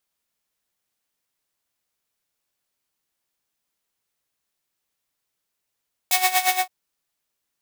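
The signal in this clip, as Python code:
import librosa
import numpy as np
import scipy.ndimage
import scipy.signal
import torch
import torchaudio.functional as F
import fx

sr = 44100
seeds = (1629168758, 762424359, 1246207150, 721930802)

y = fx.sub_patch_tremolo(sr, seeds[0], note=78, wave='triangle', wave2='saw', interval_st=-12, detune_cents=16, level2_db=-17.0, sub_db=-15.0, noise_db=-15.0, kind='highpass', cutoff_hz=1000.0, q=0.8, env_oct=2.0, env_decay_s=0.06, env_sustain_pct=35, attack_ms=3.1, decay_s=0.15, sustain_db=-4, release_s=0.13, note_s=0.44, lfo_hz=8.6, tremolo_db=14.0)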